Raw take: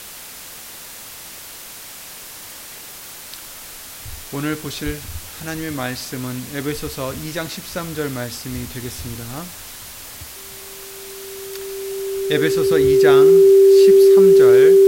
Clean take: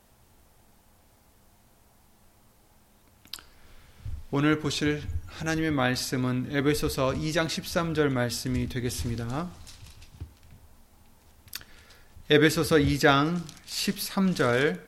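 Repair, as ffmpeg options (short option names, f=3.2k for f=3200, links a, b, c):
-filter_complex "[0:a]bandreject=f=390:w=30,asplit=3[a][b][c];[a]afade=t=out:st=4.85:d=0.02[d];[b]highpass=f=140:w=0.5412,highpass=f=140:w=1.3066,afade=t=in:st=4.85:d=0.02,afade=t=out:st=4.97:d=0.02[e];[c]afade=t=in:st=4.97:d=0.02[f];[d][e][f]amix=inputs=3:normalize=0,afwtdn=0.018"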